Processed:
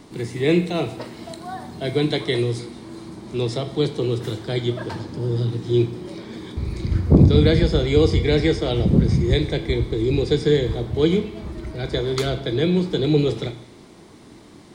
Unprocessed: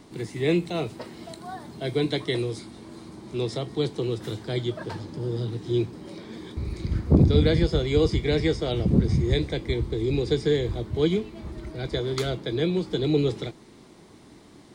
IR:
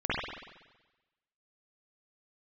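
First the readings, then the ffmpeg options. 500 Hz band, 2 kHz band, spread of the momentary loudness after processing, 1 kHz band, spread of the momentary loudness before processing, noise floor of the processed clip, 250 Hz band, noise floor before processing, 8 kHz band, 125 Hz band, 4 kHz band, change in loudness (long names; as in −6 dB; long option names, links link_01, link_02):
+4.5 dB, +5.0 dB, 16 LU, +5.0 dB, 16 LU, −45 dBFS, +5.0 dB, −50 dBFS, can't be measured, +5.0 dB, +4.5 dB, +5.0 dB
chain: -filter_complex "[0:a]asplit=2[link_01][link_02];[1:a]atrim=start_sample=2205,asetrate=61740,aresample=44100[link_03];[link_02][link_03]afir=irnorm=-1:irlink=0,volume=-17dB[link_04];[link_01][link_04]amix=inputs=2:normalize=0,volume=3.5dB"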